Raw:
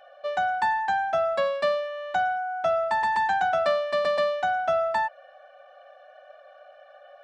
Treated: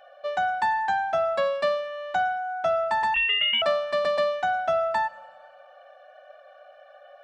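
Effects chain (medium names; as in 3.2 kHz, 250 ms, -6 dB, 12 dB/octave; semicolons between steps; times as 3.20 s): Schroeder reverb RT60 1.5 s, combs from 25 ms, DRR 19.5 dB; 3.14–3.62 s: frequency inversion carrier 3.6 kHz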